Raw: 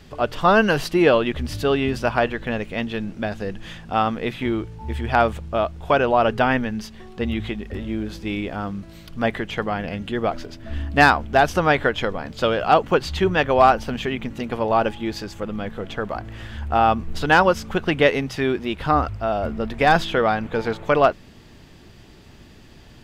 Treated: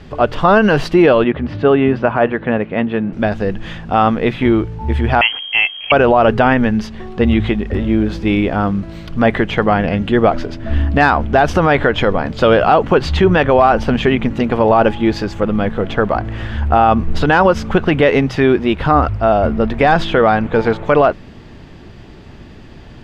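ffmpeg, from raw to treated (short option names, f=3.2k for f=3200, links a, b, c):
-filter_complex "[0:a]asettb=1/sr,asplit=3[a][b][c];[a]atrim=end=1.244[d];[b]atrim=start=1.24:end=3.13,asetpts=PTS-STARTPTS,afade=t=in:d=0.004:c=qsin,afade=t=out:st=1.886:d=0.004:c=qsin,highpass=120,lowpass=2.3k[e];[c]atrim=start=3.126[f];[d][e]acrossfade=d=0.004:c1=hsin:c2=qsin[g];[g][f]acrossfade=d=0.004:c1=qsin:c2=hsin,asettb=1/sr,asplit=3[h][i][j];[h]atrim=end=5.214[k];[i]atrim=start=5.21:end=5.92,asetpts=PTS-STARTPTS,afade=t=in:d=0.004:c=qsin,afade=t=out:st=0.706:d=0.004:c=qsin,lowpass=f=2.8k:t=q:w=0.5098,lowpass=f=2.8k:t=q:w=0.6013,lowpass=f=2.8k:t=q:w=0.9,lowpass=f=2.8k:t=q:w=2.563,afreqshift=-3300[l];[j]atrim=start=5.916[m];[k][l]acrossfade=d=0.004:c1=hsin:c2=qsin[n];[n][m]acrossfade=d=0.004:c1=qsin:c2=hsin,aemphasis=mode=reproduction:type=75fm,dynaudnorm=f=650:g=17:m=11.5dB,alimiter=level_in=10dB:limit=-1dB:release=50:level=0:latency=1,volume=-1dB"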